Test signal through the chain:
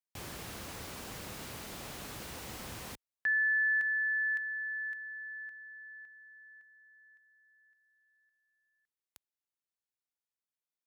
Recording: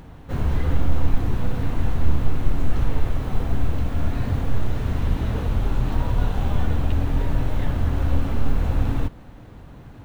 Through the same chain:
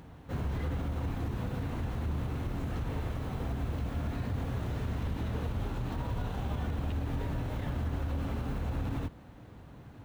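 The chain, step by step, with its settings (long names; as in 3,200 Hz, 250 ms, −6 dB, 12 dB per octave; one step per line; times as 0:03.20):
high-pass filter 56 Hz 12 dB per octave
brickwall limiter −19 dBFS
level −6.5 dB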